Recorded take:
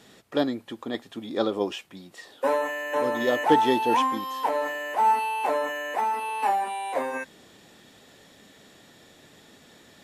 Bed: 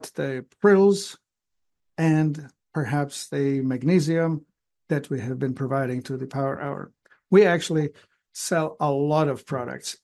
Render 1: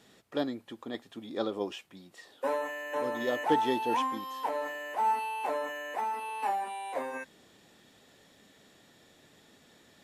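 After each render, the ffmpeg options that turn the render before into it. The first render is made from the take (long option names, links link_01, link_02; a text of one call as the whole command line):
ffmpeg -i in.wav -af "volume=-7dB" out.wav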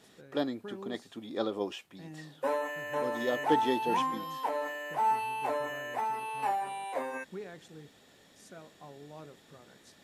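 ffmpeg -i in.wav -i bed.wav -filter_complex "[1:a]volume=-27dB[link_01];[0:a][link_01]amix=inputs=2:normalize=0" out.wav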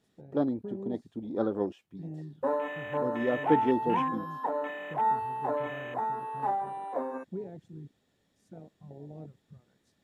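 ffmpeg -i in.wav -af "lowshelf=frequency=260:gain=11,afwtdn=0.0141" out.wav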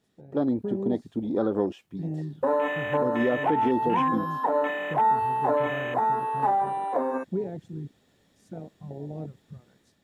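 ffmpeg -i in.wav -af "dynaudnorm=framelen=170:gausssize=5:maxgain=8.5dB,alimiter=limit=-15dB:level=0:latency=1:release=127" out.wav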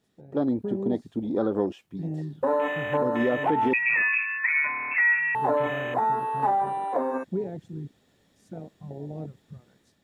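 ffmpeg -i in.wav -filter_complex "[0:a]asettb=1/sr,asplit=3[link_01][link_02][link_03];[link_01]atrim=end=3.734[link_04];[link_02]atrim=start=3.73:end=5.35,asetpts=PTS-STARTPTS,afade=type=in:duration=0.004:curve=qsin,afade=type=out:start_time=1.616:duration=0.004:curve=qsin,lowpass=frequency=2400:width_type=q:width=0.5098,lowpass=frequency=2400:width_type=q:width=0.6013,lowpass=frequency=2400:width_type=q:width=0.9,lowpass=frequency=2400:width_type=q:width=2.563,afreqshift=-2800[link_05];[link_03]atrim=start=5.346[link_06];[link_04][link_05]acrossfade=duration=0.004:curve1=hsin:curve2=qsin[link_07];[link_07][link_06]acrossfade=duration=0.004:curve1=qsin:curve2=hsin" out.wav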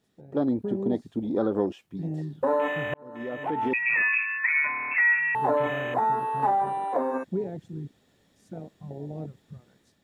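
ffmpeg -i in.wav -filter_complex "[0:a]asplit=2[link_01][link_02];[link_01]atrim=end=2.94,asetpts=PTS-STARTPTS,afade=type=out:start_time=2.936:duration=0.004:curve=hsin[link_03];[link_02]atrim=start=2.94,asetpts=PTS-STARTPTS,afade=type=in:duration=1.1[link_04];[link_03][link_04]concat=n=2:v=0:a=1" out.wav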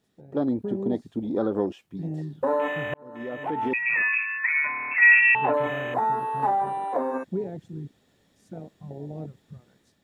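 ffmpeg -i in.wav -filter_complex "[0:a]asplit=3[link_01][link_02][link_03];[link_01]afade=type=out:start_time=5.01:duration=0.02[link_04];[link_02]lowpass=frequency=2700:width_type=q:width=9.1,afade=type=in:start_time=5.01:duration=0.02,afade=type=out:start_time=5.52:duration=0.02[link_05];[link_03]afade=type=in:start_time=5.52:duration=0.02[link_06];[link_04][link_05][link_06]amix=inputs=3:normalize=0" out.wav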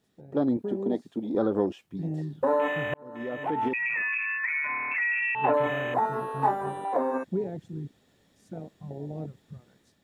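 ffmpeg -i in.wav -filter_complex "[0:a]asettb=1/sr,asplit=3[link_01][link_02][link_03];[link_01]atrim=end=0.574[link_04];[link_02]atrim=start=0.57:end=1.35,asetpts=PTS-STARTPTS,afade=type=in:duration=0.004:curve=qsin,afade=type=out:start_time=0.776:duration=0.004:curve=qsin,highpass=220[link_05];[link_03]atrim=start=1.346[link_06];[link_04][link_05]acrossfade=duration=0.004:curve1=hsin:curve2=qsin[link_07];[link_07][link_06]acrossfade=duration=0.004:curve1=qsin:curve2=hsin,asettb=1/sr,asplit=3[link_08][link_09][link_10];[link_08]atrim=end=3.684[link_11];[link_09]atrim=start=3.68:end=5.44,asetpts=PTS-STARTPTS,afade=type=in:duration=0.004:curve=qsin,afade=type=out:start_time=1.756:duration=0.004:curve=qsin,acompressor=threshold=-25dB:ratio=6:attack=3.2:release=140:knee=1:detection=peak[link_12];[link_10]atrim=start=5.436[link_13];[link_11][link_12]acrossfade=duration=0.004:curve1=hsin:curve2=qsin[link_14];[link_14][link_13]acrossfade=duration=0.004:curve1=qsin:curve2=hsin,asettb=1/sr,asplit=3[link_15][link_16][link_17];[link_15]atrim=end=6.034[link_18];[link_16]atrim=start=6.03:end=6.85,asetpts=PTS-STARTPTS,afade=type=in:duration=0.004:curve=qsin,afade=type=out:start_time=0.816:duration=0.004:curve=qsin,asplit=2[link_19][link_20];[link_20]adelay=21,volume=-3dB[link_21];[link_19][link_21]amix=inputs=2:normalize=0,atrim=end_sample=36162[link_22];[link_17]atrim=start=6.846[link_23];[link_18][link_22]acrossfade=duration=0.004:curve1=hsin:curve2=qsin[link_24];[link_24][link_23]acrossfade=duration=0.004:curve1=qsin:curve2=hsin" out.wav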